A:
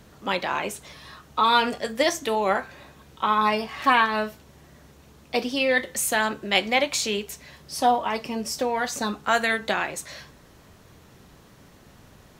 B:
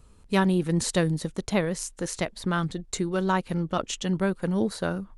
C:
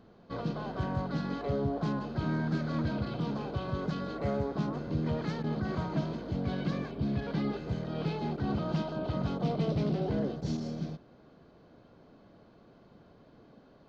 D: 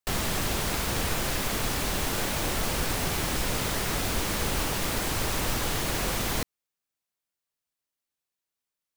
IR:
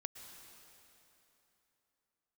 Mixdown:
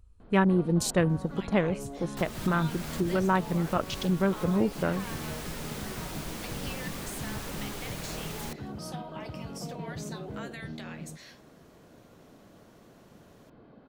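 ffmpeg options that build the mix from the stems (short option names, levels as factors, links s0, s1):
-filter_complex "[0:a]highpass=f=1200:p=1,alimiter=limit=0.141:level=0:latency=1:release=474,acompressor=threshold=0.0141:ratio=2.5,adelay=1100,volume=0.422[s0];[1:a]afwtdn=0.0178,volume=0.944,asplit=2[s1][s2];[2:a]lowpass=3000,acompressor=threshold=0.00398:ratio=2,adelay=200,volume=1.33[s3];[3:a]adelay=2100,volume=0.282[s4];[s2]apad=whole_len=487957[s5];[s4][s5]sidechaincompress=threshold=0.0355:ratio=8:attack=8.9:release=272[s6];[s0][s1][s3][s6]amix=inputs=4:normalize=0"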